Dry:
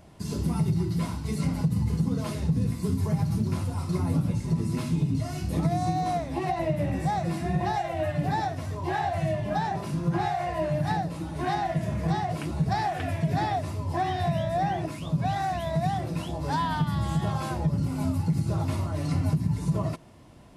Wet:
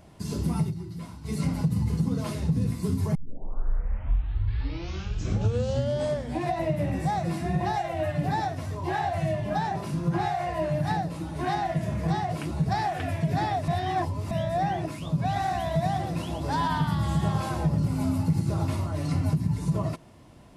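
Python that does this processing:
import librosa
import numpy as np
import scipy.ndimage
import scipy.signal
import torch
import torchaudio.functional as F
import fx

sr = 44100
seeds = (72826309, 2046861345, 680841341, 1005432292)

y = fx.echo_single(x, sr, ms=115, db=-6.0, at=(15.34, 18.66), fade=0.02)
y = fx.edit(y, sr, fx.fade_down_up(start_s=0.61, length_s=0.73, db=-10.0, fade_s=0.13),
    fx.tape_start(start_s=3.15, length_s=3.49),
    fx.reverse_span(start_s=13.68, length_s=0.63), tone=tone)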